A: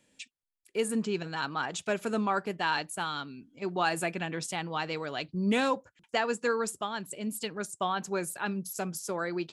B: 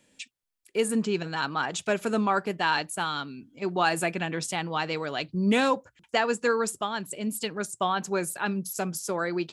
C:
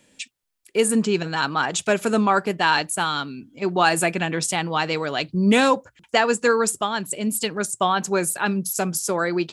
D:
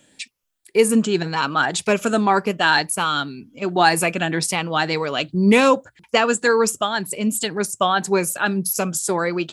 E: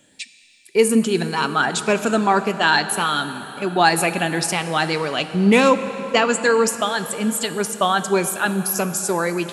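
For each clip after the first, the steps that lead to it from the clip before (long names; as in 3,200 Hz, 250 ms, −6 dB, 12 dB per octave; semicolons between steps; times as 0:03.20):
mains-hum notches 60/120 Hz; level +4 dB
dynamic equaliser 8,900 Hz, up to +4 dB, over −48 dBFS, Q 1; level +6 dB
rippled gain that drifts along the octave scale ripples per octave 0.85, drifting +1.9 Hz, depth 7 dB; level +1.5 dB
dense smooth reverb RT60 4.3 s, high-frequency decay 0.75×, DRR 10.5 dB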